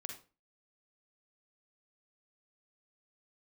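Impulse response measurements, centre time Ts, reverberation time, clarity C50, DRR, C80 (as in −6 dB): 22 ms, 0.35 s, 5.5 dB, 2.5 dB, 12.0 dB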